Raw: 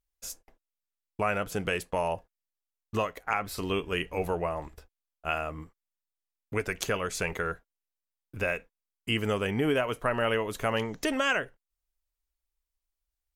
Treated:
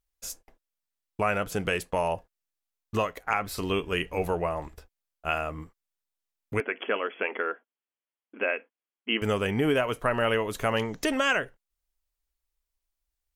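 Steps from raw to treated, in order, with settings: 6.6–9.22 brick-wall FIR band-pass 210–3400 Hz; gain +2 dB

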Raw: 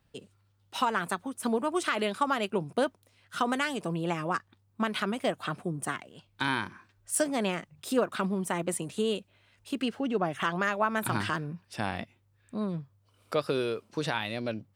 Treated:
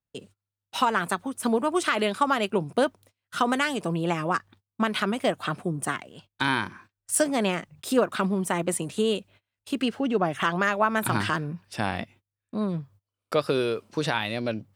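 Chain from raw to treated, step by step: gate -55 dBFS, range -27 dB; gain +4.5 dB

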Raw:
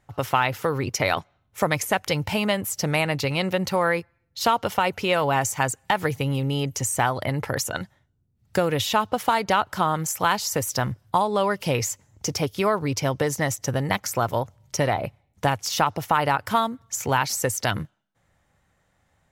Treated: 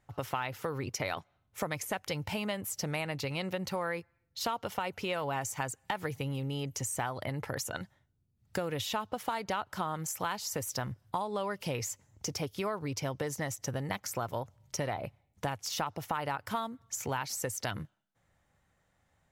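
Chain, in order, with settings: compressor 2:1, threshold -29 dBFS, peak gain reduction 8 dB; gain -6 dB

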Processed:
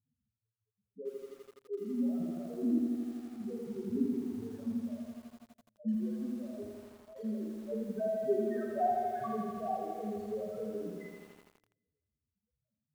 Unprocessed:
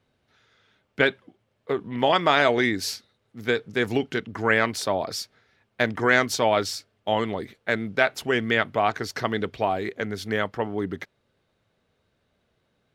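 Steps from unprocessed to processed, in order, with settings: 5.9–6.49 compressor 4:1, threshold -21 dBFS, peak gain reduction 7 dB; loudest bins only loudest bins 1; low-pass sweep 250 Hz -> 3800 Hz, 6.99–10.74; on a send at -1.5 dB: reverb, pre-delay 3 ms; on the sum: lo-fi delay 83 ms, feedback 80%, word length 9-bit, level -4.5 dB; gain -6.5 dB

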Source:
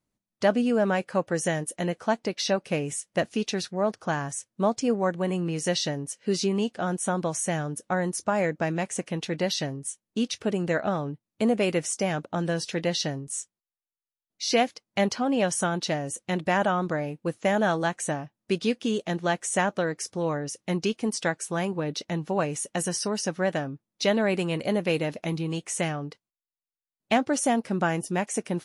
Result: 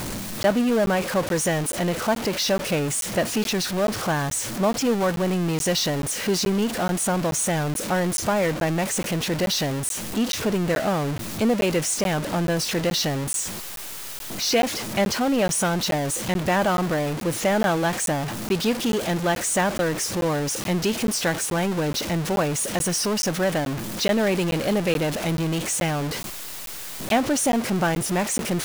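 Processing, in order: zero-crossing step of -23.5 dBFS; crackling interface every 0.43 s, samples 512, zero, from 0.43

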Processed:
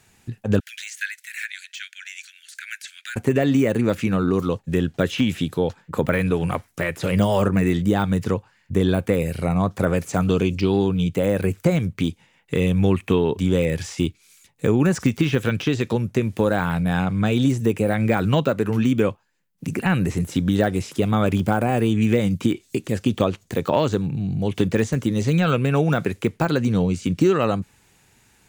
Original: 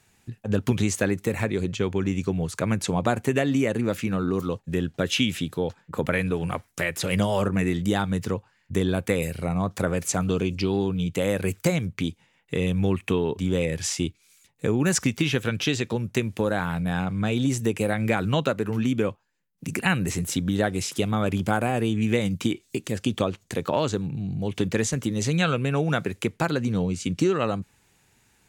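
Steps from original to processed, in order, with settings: 0.6–3.16 steep high-pass 1500 Hz 96 dB/oct; de-esser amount 95%; gain +5 dB

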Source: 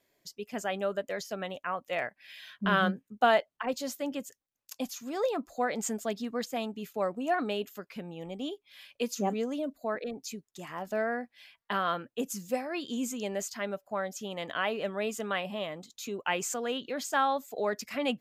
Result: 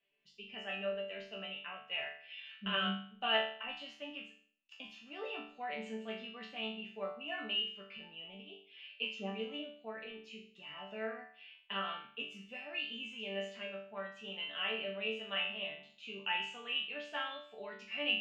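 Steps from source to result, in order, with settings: 7.8–8.51 negative-ratio compressor -39 dBFS, ratio -0.5; synth low-pass 2800 Hz, resonance Q 14; resonator bank D3 sus4, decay 0.51 s; gain +4.5 dB

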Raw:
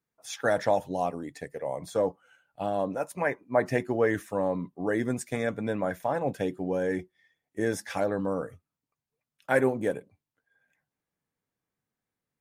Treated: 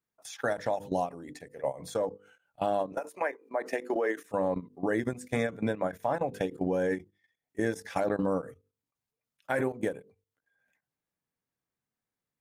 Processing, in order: 2.92–4.25 HPF 300 Hz 24 dB/oct; notches 50/100/150/200/250/300/350/400/450/500 Hz; level quantiser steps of 16 dB; ending taper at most 260 dB/s; gain +4.5 dB

